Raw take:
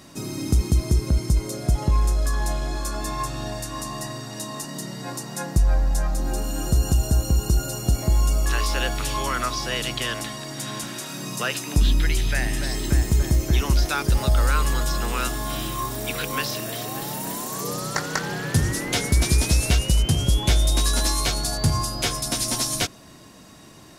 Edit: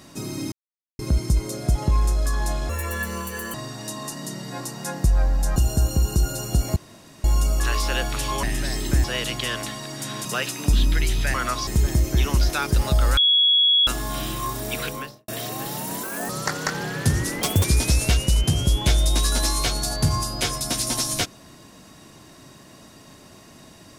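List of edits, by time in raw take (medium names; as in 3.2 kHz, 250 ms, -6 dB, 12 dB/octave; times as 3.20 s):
0.52–0.99 s: mute
2.69–4.06 s: speed 161%
6.08–6.90 s: delete
8.10 s: insert room tone 0.48 s
9.29–9.62 s: swap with 12.42–13.03 s
10.83–11.33 s: delete
14.53–15.23 s: bleep 3.35 kHz -14 dBFS
16.16–16.64 s: studio fade out
17.39–17.78 s: speed 149%
18.90–19.26 s: speed 154%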